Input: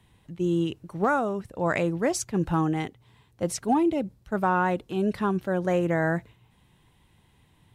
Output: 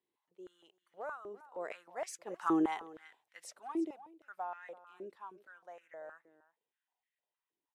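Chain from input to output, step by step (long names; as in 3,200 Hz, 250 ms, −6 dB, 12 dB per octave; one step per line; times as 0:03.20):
source passing by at 0:02.73, 11 m/s, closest 3.1 metres
single-tap delay 334 ms −16.5 dB
high-pass on a step sequencer 6.4 Hz 360–1,900 Hz
level −8.5 dB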